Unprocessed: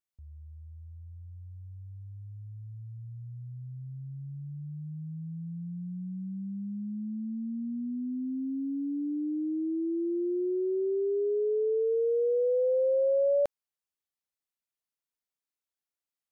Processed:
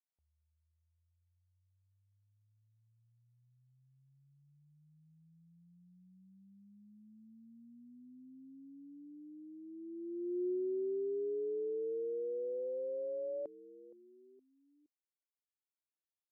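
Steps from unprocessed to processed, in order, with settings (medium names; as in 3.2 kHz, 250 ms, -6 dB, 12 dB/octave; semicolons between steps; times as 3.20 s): frequency-shifting echo 467 ms, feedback 35%, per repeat -92 Hz, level -21 dB; band-pass sweep 800 Hz -> 330 Hz, 9.61–10.58 s; trim -5.5 dB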